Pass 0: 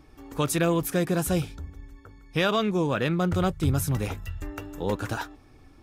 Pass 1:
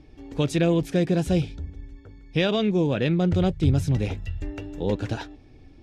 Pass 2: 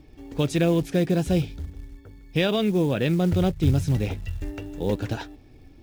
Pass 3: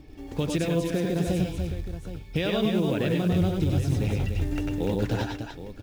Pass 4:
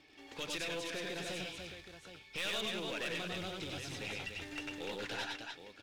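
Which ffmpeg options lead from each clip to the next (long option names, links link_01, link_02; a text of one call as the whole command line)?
ffmpeg -i in.wav -af "lowpass=4300,equalizer=frequency=1200:width_type=o:width=0.96:gain=-14.5,volume=4dB" out.wav
ffmpeg -i in.wav -af "acrusher=bits=7:mode=log:mix=0:aa=0.000001" out.wav
ffmpeg -i in.wav -filter_complex "[0:a]acompressor=threshold=-26dB:ratio=6,asplit=2[link_01][link_02];[link_02]aecho=0:1:95|105|293|771:0.562|0.531|0.473|0.237[link_03];[link_01][link_03]amix=inputs=2:normalize=0,volume=2dB" out.wav
ffmpeg -i in.wav -af "bandpass=frequency=2900:width_type=q:width=0.8:csg=0,aeval=exprs='(tanh(56.2*val(0)+0.3)-tanh(0.3))/56.2':channel_layout=same,volume=2.5dB" out.wav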